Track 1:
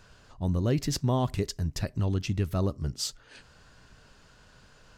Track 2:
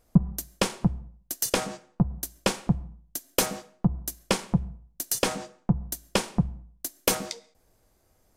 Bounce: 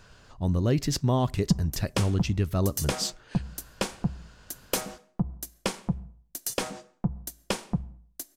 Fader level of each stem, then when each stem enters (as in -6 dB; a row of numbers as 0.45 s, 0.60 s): +2.0 dB, -4.5 dB; 0.00 s, 1.35 s